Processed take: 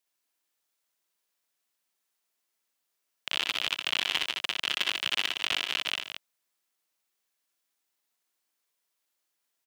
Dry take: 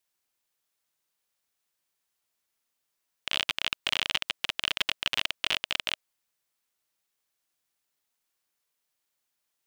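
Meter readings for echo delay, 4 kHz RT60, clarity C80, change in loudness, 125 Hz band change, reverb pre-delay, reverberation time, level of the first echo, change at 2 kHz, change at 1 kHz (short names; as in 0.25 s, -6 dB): 62 ms, none, none, 0.0 dB, n/a, none, none, -3.5 dB, +0.5 dB, 0.0 dB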